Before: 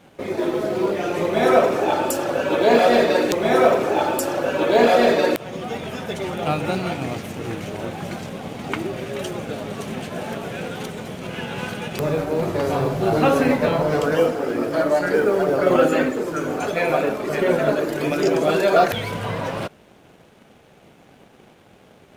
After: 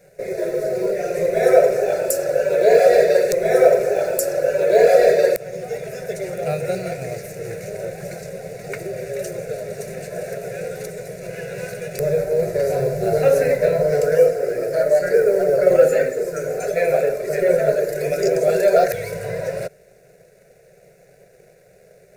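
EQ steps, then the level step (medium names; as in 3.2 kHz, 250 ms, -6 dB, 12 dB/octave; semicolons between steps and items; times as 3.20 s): static phaser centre 310 Hz, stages 6; static phaser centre 860 Hz, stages 6; +5.5 dB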